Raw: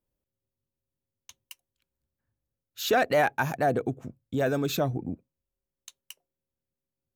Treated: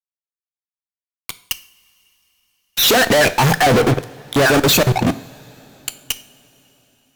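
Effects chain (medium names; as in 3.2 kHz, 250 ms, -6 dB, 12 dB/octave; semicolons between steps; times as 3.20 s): random holes in the spectrogram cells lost 32%; fuzz box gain 51 dB, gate -48 dBFS; two-slope reverb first 0.45 s, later 4.3 s, from -20 dB, DRR 12 dB; trim +1.5 dB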